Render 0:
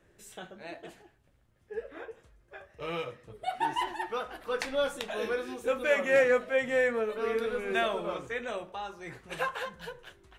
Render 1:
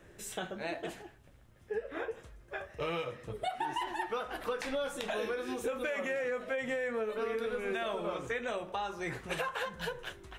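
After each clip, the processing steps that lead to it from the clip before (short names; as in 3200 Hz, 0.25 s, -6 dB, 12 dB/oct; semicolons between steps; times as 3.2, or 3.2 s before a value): notch 4500 Hz, Q 26; limiter -22.5 dBFS, peak gain reduction 9 dB; compressor, threshold -40 dBFS, peak gain reduction 12.5 dB; gain +7.5 dB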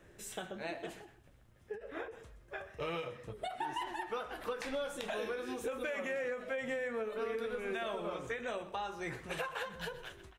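echo 0.126 s -16 dB; ending taper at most 140 dB/s; gain -3 dB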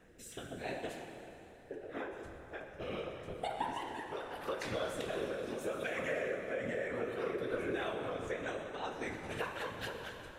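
rotary speaker horn 0.8 Hz, later 5 Hz, at 7.01; whisperiser; plate-style reverb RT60 3.9 s, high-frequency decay 0.7×, DRR 4 dB; gain +1 dB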